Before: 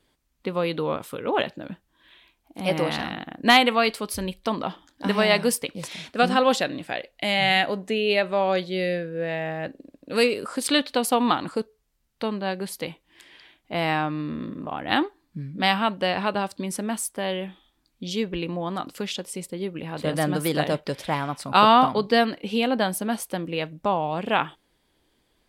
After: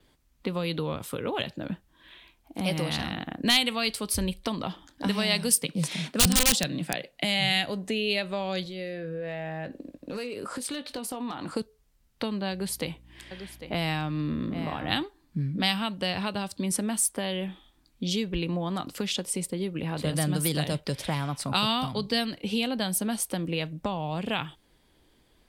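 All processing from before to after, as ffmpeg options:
ffmpeg -i in.wav -filter_complex "[0:a]asettb=1/sr,asplit=3[link_01][link_02][link_03];[link_01]atrim=end=5.574[link_04];[link_02]atrim=start=5.57:end=7.25,asetpts=PTS-STARTPTS,afade=type=in:duration=0.004:curve=qsin,afade=type=out:start_time=1.676:duration=0.004:curve=qsin,lowshelf=frequency=110:width_type=q:width=3:gain=-11.5,aeval=exprs='(mod(3.98*val(0)+1,2)-1)/3.98':channel_layout=same[link_05];[link_03]atrim=start=7.246[link_06];[link_04][link_05]acrossfade=duration=0.004:curve1=hsin:curve2=qsin[link_07];[link_07][link_06]acrossfade=duration=0.004:curve1=qsin:curve2=hsin,asettb=1/sr,asplit=3[link_08][link_09][link_10];[link_08]atrim=end=8.634[link_11];[link_09]atrim=start=8.63:end=11.54,asetpts=PTS-STARTPTS,afade=type=in:duration=0.004:curve=qsin,afade=type=out:start_time=2.906:duration=0.004:curve=qsin,acompressor=threshold=-35dB:ratio=6:attack=3.2:release=140:knee=1:detection=peak,asoftclip=type=hard:threshold=-30dB,asplit=2[link_12][link_13];[link_13]adelay=20,volume=-11dB[link_14];[link_12][link_14]amix=inputs=2:normalize=0,atrim=end_sample=128331[link_15];[link_10]atrim=start=11.536[link_16];[link_11][link_15]acrossfade=duration=0.004:curve1=hsin:curve2=qsin[link_17];[link_17][link_16]acrossfade=duration=0.004:curve1=qsin:curve2=hsin,asettb=1/sr,asplit=3[link_18][link_19][link_20];[link_18]atrim=end=12.514[link_21];[link_19]atrim=start=12.51:end=15.03,asetpts=PTS-STARTPTS,afade=type=in:duration=0.004:curve=qsin,afade=type=out:start_time=2.516:duration=0.004:curve=qsin,aeval=exprs='val(0)+0.00112*(sin(2*PI*60*n/s)+sin(2*PI*2*60*n/s)/2+sin(2*PI*3*60*n/s)/3+sin(2*PI*4*60*n/s)/4+sin(2*PI*5*60*n/s)/5)':channel_layout=same,aecho=1:1:799:0.178,atrim=end_sample=111132[link_22];[link_20]atrim=start=15.026[link_23];[link_21][link_22]acrossfade=duration=0.004:curve1=hsin:curve2=qsin[link_24];[link_24][link_23]acrossfade=duration=0.004:curve1=qsin:curve2=hsin,lowshelf=frequency=200:gain=5,acrossover=split=150|3000[link_25][link_26][link_27];[link_26]acompressor=threshold=-32dB:ratio=6[link_28];[link_25][link_28][link_27]amix=inputs=3:normalize=0,adynamicequalizer=threshold=0.002:dfrequency=8900:dqfactor=6.2:tfrequency=8900:tqfactor=6.2:attack=5:release=100:ratio=0.375:range=3:mode=boostabove:tftype=bell,volume=2.5dB" out.wav

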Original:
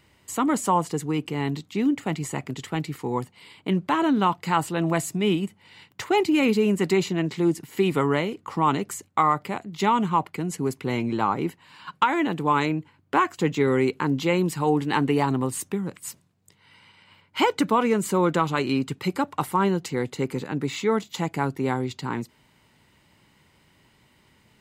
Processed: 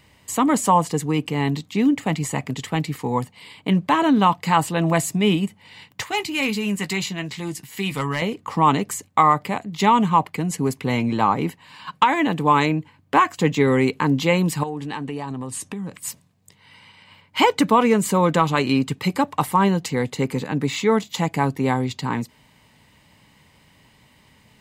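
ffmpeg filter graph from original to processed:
ffmpeg -i in.wav -filter_complex "[0:a]asettb=1/sr,asplit=3[link_01][link_02][link_03];[link_01]atrim=end=6.034[link_04];[link_02]atrim=start=6.03:end=8.22,asetpts=PTS-STARTPTS,afade=type=in:duration=0.004:curve=qsin,afade=type=out:start_time=2.186:duration=0.004:curve=qsin,equalizer=frequency=370:width=0.46:gain=-11,volume=19dB,asoftclip=hard,volume=-19dB,asplit=2[link_05][link_06];[link_06]adelay=15,volume=-10.5dB[link_07];[link_05][link_07]amix=inputs=2:normalize=0,atrim=end_sample=96579[link_08];[link_03]atrim=start=8.216[link_09];[link_04][link_08]acrossfade=duration=0.004:curve1=hsin:curve2=qsin[link_10];[link_10][link_09]acrossfade=duration=0.004:curve1=qsin:curve2=hsin,asettb=1/sr,asplit=3[link_11][link_12][link_13];[link_11]atrim=end=14.634[link_14];[link_12]atrim=start=14.63:end=15.94,asetpts=PTS-STARTPTS,afade=type=in:duration=0.004:curve=qsin,afade=type=out:start_time=1.306:duration=0.004:curve=qsin,lowpass=frequency=11000:width=0.5412,lowpass=frequency=11000:width=1.3066,bandreject=frequency=2100:width=19,acompressor=threshold=-32dB:ratio=4:attack=3.2:release=140:knee=1:detection=peak[link_15];[link_13]atrim=start=15.936[link_16];[link_14][link_15]acrossfade=duration=0.004:curve1=hsin:curve2=qsin[link_17];[link_17][link_16]acrossfade=duration=0.004:curve1=qsin:curve2=hsin,equalizer=frequency=360:width=6.9:gain=-10.5,bandreject=frequency=1400:width=8.2,volume=5.5dB" out.wav

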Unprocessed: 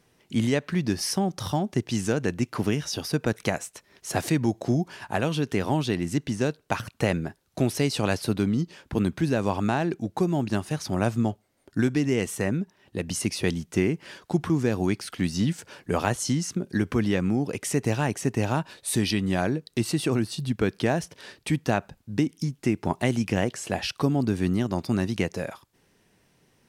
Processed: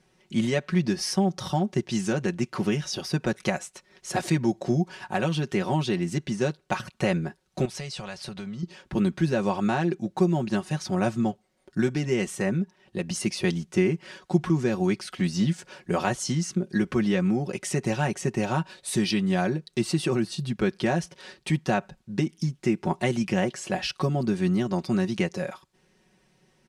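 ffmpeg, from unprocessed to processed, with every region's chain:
ffmpeg -i in.wav -filter_complex "[0:a]asettb=1/sr,asplit=3[link_01][link_02][link_03];[link_01]atrim=end=7.654[link_04];[link_02]atrim=start=7.65:end=8.63,asetpts=PTS-STARTPTS,afade=type=in:duration=0.004:curve=qsin,afade=type=out:start_time=0.976:duration=0.004:curve=qsin,lowpass=9400,equalizer=frequency=300:width=1.3:gain=-11.5,acompressor=threshold=-32dB:ratio=4:attack=3.2:release=140:knee=1:detection=peak[link_05];[link_03]atrim=start=8.626[link_06];[link_04][link_05]acrossfade=duration=0.004:curve1=hsin:curve2=qsin[link_07];[link_07][link_06]acrossfade=duration=0.004:curve1=qsin:curve2=hsin,lowpass=8800,aecho=1:1:5.4:0.74,volume=-2dB" out.wav

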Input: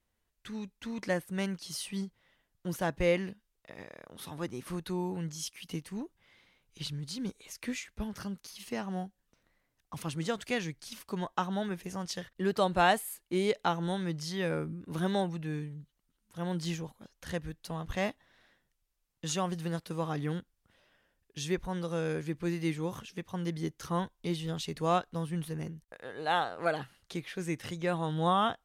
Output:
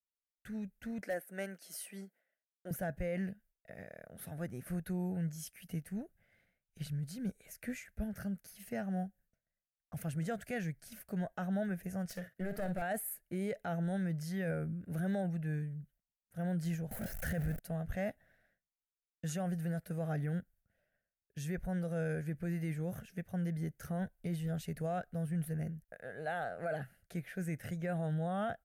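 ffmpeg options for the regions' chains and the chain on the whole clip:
ffmpeg -i in.wav -filter_complex "[0:a]asettb=1/sr,asplit=3[link_01][link_02][link_03];[link_01]atrim=end=1.014[link_04];[link_02]atrim=start=1.01:end=2.71,asetpts=PTS-STARTPTS,afade=type=in:duration=0.004:curve=qsin,afade=type=out:start_time=1.696:duration=0.004:curve=qsin,highpass=frequency=280:width=0.5412,highpass=frequency=280:width=1.3066,aeval=exprs='0.0794*(abs(mod(val(0)/0.0794+3,4)-2)-1)':channel_layout=same[link_05];[link_03]atrim=start=2.706[link_06];[link_04][link_05]acrossfade=duration=0.004:curve1=hsin:curve2=qsin[link_07];[link_07][link_06]acrossfade=duration=0.004:curve1=qsin:curve2=hsin,asettb=1/sr,asplit=3[link_08][link_09][link_10];[link_08]atrim=end=12.094[link_11];[link_09]atrim=start=12.09:end=12.82,asetpts=PTS-STARTPTS,afade=type=in:duration=0.004:curve=qsin,afade=type=out:start_time=0.726:duration=0.004:curve=qsin,highpass=130,aeval=exprs='clip(val(0),-1,0.0188)':channel_layout=same,asplit=2[link_12][link_13];[link_13]adelay=50,volume=-13.5dB[link_14];[link_12][link_14]amix=inputs=2:normalize=0,atrim=end_sample=32193[link_15];[link_10]atrim=start=12.816[link_16];[link_11][link_15]acrossfade=duration=0.004:curve1=hsin:curve2=qsin[link_17];[link_17][link_16]acrossfade=duration=0.004:curve1=qsin:curve2=hsin,asettb=1/sr,asplit=3[link_18][link_19][link_20];[link_18]atrim=end=16.914[link_21];[link_19]atrim=start=16.91:end=17.59,asetpts=PTS-STARTPTS,afade=type=in:duration=0.004:curve=qsin,afade=type=out:start_time=0.676:duration=0.004:curve=qsin,aeval=exprs='val(0)+0.5*0.00708*sgn(val(0))':channel_layout=same,acontrast=81[link_22];[link_20]atrim=start=17.586[link_23];[link_21][link_22]acrossfade=duration=0.004:curve1=hsin:curve2=qsin[link_24];[link_24][link_23]acrossfade=duration=0.004:curve1=qsin:curve2=hsin,agate=range=-33dB:threshold=-59dB:ratio=3:detection=peak,firequalizer=gain_entry='entry(190,0);entry(310,-11);entry(660,2);entry(1000,-23);entry(1500,-1);entry(3400,-18);entry(12000,1)':delay=0.05:min_phase=1,alimiter=level_in=5.5dB:limit=-24dB:level=0:latency=1:release=18,volume=-5.5dB,volume=1dB" out.wav

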